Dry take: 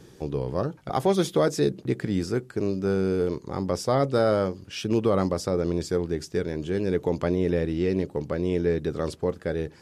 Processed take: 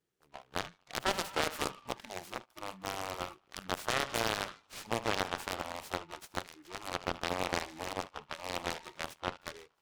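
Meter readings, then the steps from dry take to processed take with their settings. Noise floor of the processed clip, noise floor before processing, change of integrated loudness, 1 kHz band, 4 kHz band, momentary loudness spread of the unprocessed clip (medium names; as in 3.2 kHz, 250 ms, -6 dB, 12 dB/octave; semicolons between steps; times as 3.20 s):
-72 dBFS, -52 dBFS, -11.0 dB, -3.5 dB, +0.5 dB, 7 LU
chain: Chebyshev shaper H 2 -21 dB, 3 -8 dB, 8 -33 dB, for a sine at -10 dBFS; peaking EQ 1 kHz -3.5 dB 0.41 oct; peak limiter -16.5 dBFS, peak gain reduction 8.5 dB; bass shelf 480 Hz -11.5 dB; band-passed feedback delay 76 ms, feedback 80%, band-pass 1.1 kHz, level -12.5 dB; spectral noise reduction 19 dB; delay time shaken by noise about 1.5 kHz, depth 0.088 ms; trim +4.5 dB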